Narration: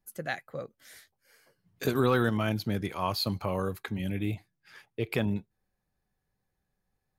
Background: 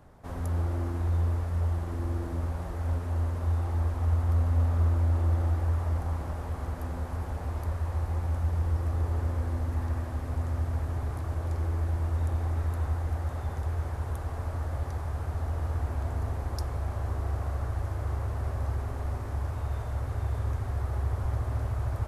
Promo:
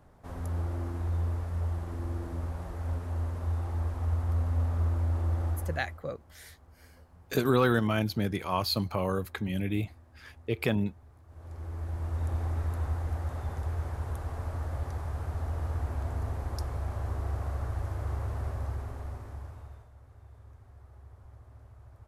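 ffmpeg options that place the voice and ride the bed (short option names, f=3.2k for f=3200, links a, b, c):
-filter_complex "[0:a]adelay=5500,volume=1dB[a];[1:a]volume=17.5dB,afade=t=out:st=5.49:d=0.51:silence=0.105925,afade=t=in:st=11.27:d=1.09:silence=0.0891251,afade=t=out:st=18.37:d=1.53:silence=0.1[b];[a][b]amix=inputs=2:normalize=0"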